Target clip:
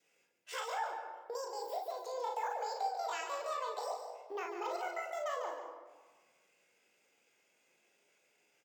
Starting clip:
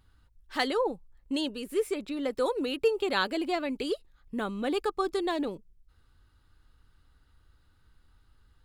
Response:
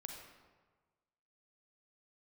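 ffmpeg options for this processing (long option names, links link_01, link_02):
-filter_complex "[0:a]acompressor=threshold=-40dB:ratio=10,adynamicequalizer=threshold=0.00112:dfrequency=610:dqfactor=1.3:tfrequency=610:tqfactor=1.3:attack=5:release=100:ratio=0.375:range=4:mode=boostabove:tftype=bell,asetrate=76340,aresample=44100,atempo=0.577676,highpass=frequency=370:width=0.5412,highpass=frequency=370:width=1.3066,aecho=1:1:37|54:0.531|0.422,asplit=2[link_01][link_02];[1:a]atrim=start_sample=2205,lowshelf=frequency=280:gain=10,adelay=145[link_03];[link_02][link_03]afir=irnorm=-1:irlink=0,volume=-3.5dB[link_04];[link_01][link_04]amix=inputs=2:normalize=0,volume=-1.5dB"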